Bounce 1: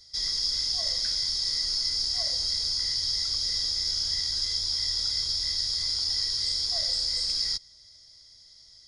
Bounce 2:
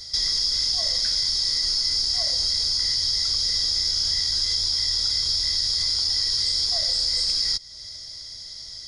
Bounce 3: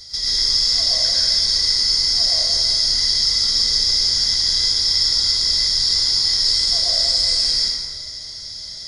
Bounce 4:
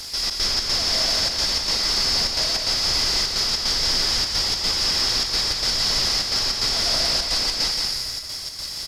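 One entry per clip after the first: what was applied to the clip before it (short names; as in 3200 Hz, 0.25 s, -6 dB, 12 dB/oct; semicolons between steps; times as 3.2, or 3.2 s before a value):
in parallel at +1 dB: limiter -23 dBFS, peak gain reduction 7.5 dB; on the sum: compressor 2:1, threshold -36 dBFS, peak gain reduction 9 dB; gain +8.5 dB
plate-style reverb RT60 1.7 s, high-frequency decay 0.7×, pre-delay 85 ms, DRR -7 dB; gain -1 dB
delta modulation 64 kbps, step -28 dBFS; step gate "xxx.xx.xxx" 152 bpm; echo 0.172 s -3.5 dB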